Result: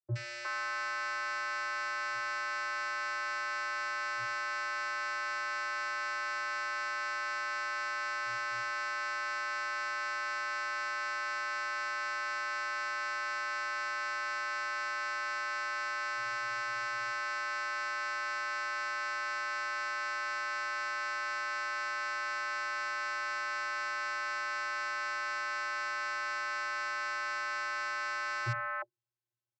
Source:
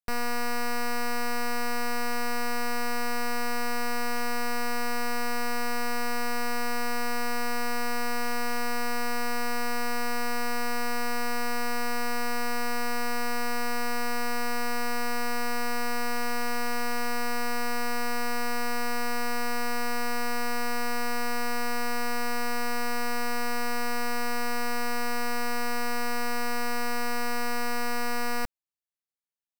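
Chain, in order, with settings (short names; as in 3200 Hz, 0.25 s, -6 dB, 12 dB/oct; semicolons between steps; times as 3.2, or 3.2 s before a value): vocoder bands 32, square 118 Hz; three bands offset in time lows, highs, mids 70/360 ms, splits 530/2000 Hz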